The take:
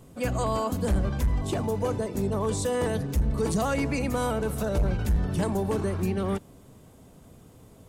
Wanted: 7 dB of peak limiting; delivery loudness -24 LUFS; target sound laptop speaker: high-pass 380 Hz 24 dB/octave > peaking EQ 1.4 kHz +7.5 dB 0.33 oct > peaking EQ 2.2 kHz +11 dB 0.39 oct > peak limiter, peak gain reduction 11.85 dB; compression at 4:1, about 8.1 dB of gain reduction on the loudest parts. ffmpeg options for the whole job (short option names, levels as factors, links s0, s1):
-af "acompressor=threshold=0.0316:ratio=4,alimiter=level_in=1.78:limit=0.0631:level=0:latency=1,volume=0.562,highpass=f=380:w=0.5412,highpass=f=380:w=1.3066,equalizer=f=1400:t=o:w=0.33:g=7.5,equalizer=f=2200:t=o:w=0.39:g=11,volume=11.2,alimiter=limit=0.158:level=0:latency=1"